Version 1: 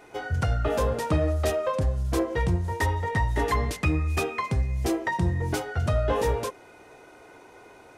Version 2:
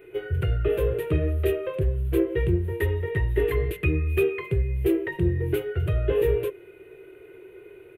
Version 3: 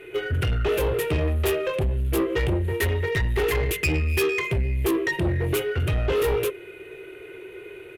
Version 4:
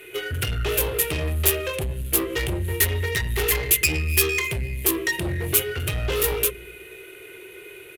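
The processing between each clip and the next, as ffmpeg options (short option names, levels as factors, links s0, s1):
-af "firequalizer=gain_entry='entry(160,0);entry(240,-19);entry(370,12);entry(530,-4);entry(790,-19);entry(1500,-6);entry(2700,1);entry(5300,-29);entry(12000,2)':delay=0.05:min_phase=1,volume=1.12"
-af "crystalizer=i=7:c=0,adynamicsmooth=sensitivity=3.5:basefreq=5000,asoftclip=type=tanh:threshold=0.0668,volume=1.68"
-filter_complex "[0:a]acrossover=split=330[s0][s1];[s0]aecho=1:1:102|204|306|408|510|612|714:0.398|0.219|0.12|0.0662|0.0364|0.02|0.011[s2];[s1]crystalizer=i=5.5:c=0[s3];[s2][s3]amix=inputs=2:normalize=0,volume=0.631"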